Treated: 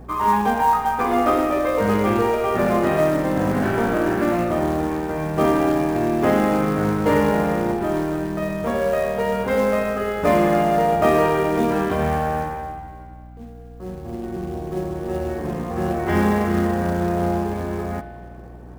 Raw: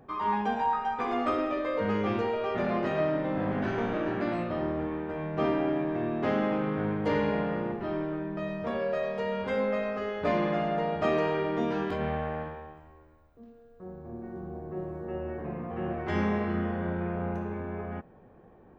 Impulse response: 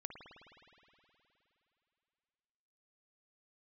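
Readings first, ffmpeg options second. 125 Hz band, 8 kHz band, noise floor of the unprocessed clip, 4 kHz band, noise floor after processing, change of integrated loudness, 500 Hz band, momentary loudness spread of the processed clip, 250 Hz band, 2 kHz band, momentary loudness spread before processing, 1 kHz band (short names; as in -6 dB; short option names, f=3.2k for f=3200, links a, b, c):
+9.5 dB, n/a, -55 dBFS, +8.0 dB, -39 dBFS, +9.5 dB, +9.5 dB, 12 LU, +9.5 dB, +9.0 dB, 10 LU, +10.5 dB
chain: -filter_complex "[0:a]acrusher=bits=4:mode=log:mix=0:aa=0.000001,asplit=2[a][b];[1:a]atrim=start_sample=2205,asetrate=61740,aresample=44100,lowpass=2.7k[c];[b][c]afir=irnorm=-1:irlink=0,volume=5dB[d];[a][d]amix=inputs=2:normalize=0,aeval=exprs='val(0)+0.00631*(sin(2*PI*60*n/s)+sin(2*PI*2*60*n/s)/2+sin(2*PI*3*60*n/s)/3+sin(2*PI*4*60*n/s)/4+sin(2*PI*5*60*n/s)/5)':c=same,volume=5dB"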